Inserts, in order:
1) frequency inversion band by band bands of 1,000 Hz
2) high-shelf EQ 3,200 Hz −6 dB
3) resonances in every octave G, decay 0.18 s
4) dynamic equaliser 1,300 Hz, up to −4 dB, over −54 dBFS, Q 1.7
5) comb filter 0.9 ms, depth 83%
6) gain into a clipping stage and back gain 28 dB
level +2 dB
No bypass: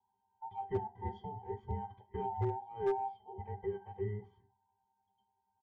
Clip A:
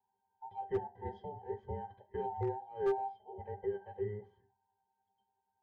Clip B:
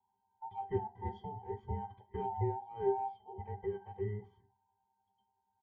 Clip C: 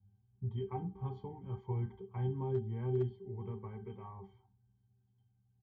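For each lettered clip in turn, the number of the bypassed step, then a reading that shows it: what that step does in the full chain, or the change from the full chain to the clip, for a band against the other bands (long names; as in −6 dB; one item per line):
5, 125 Hz band −5.5 dB
6, distortion level −21 dB
1, 1 kHz band −13.0 dB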